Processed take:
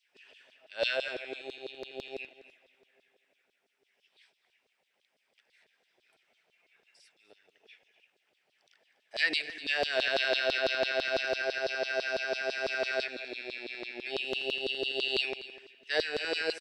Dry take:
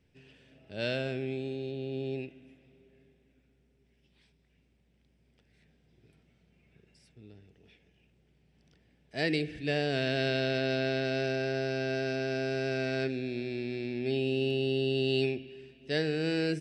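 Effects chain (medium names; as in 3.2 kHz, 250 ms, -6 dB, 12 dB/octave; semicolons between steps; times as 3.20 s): LFO high-pass saw down 6 Hz 500–4300 Hz; delay 248 ms -16 dB; trim +1.5 dB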